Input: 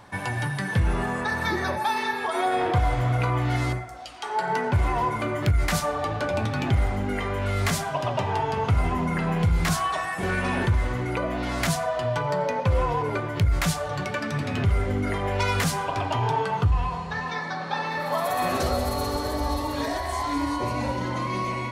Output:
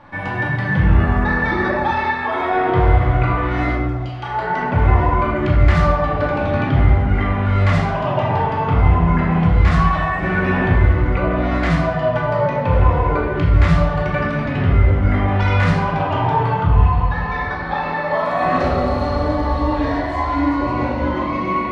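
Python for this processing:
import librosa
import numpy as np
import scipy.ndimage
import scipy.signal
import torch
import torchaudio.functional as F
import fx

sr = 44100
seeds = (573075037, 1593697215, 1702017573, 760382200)

y = scipy.signal.sosfilt(scipy.signal.butter(2, 2500.0, 'lowpass', fs=sr, output='sos'), x)
y = fx.room_shoebox(y, sr, seeds[0], volume_m3=660.0, walls='mixed', distance_m=2.4)
y = F.gain(torch.from_numpy(y), 1.5).numpy()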